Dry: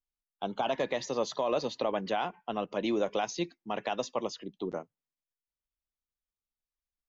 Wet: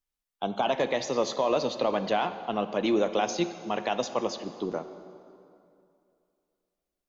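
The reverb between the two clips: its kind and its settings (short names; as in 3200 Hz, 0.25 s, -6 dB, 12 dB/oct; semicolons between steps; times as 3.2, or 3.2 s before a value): plate-style reverb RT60 2.6 s, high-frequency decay 0.7×, DRR 10 dB; gain +4 dB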